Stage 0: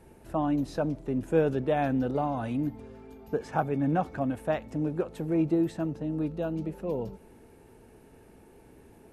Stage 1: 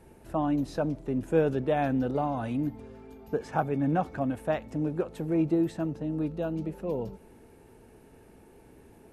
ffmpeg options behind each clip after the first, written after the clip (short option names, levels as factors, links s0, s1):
-af anull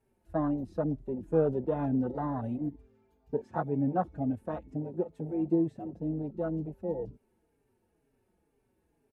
-filter_complex "[0:a]afwtdn=0.0316,asplit=2[s0][s1];[s1]adelay=4.6,afreqshift=-2.1[s2];[s0][s2]amix=inputs=2:normalize=1"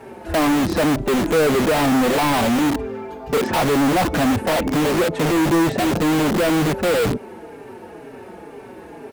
-filter_complex "[0:a]asplit=2[s0][s1];[s1]highpass=f=720:p=1,volume=112,asoftclip=type=tanh:threshold=0.2[s2];[s0][s2]amix=inputs=2:normalize=0,lowpass=f=1200:p=1,volume=0.501,asplit=2[s3][s4];[s4]aeval=exprs='(mod(15*val(0)+1,2)-1)/15':c=same,volume=0.631[s5];[s3][s5]amix=inputs=2:normalize=0,volume=1.78"